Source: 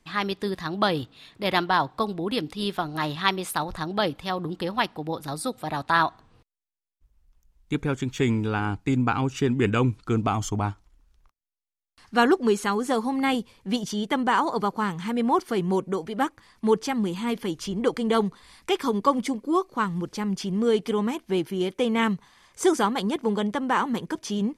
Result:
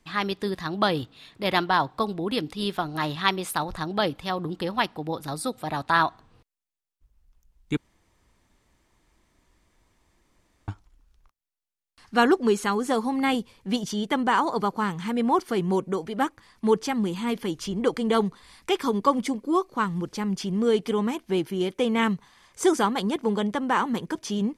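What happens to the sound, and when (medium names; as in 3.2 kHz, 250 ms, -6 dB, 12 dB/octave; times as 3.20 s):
7.77–10.68 s: room tone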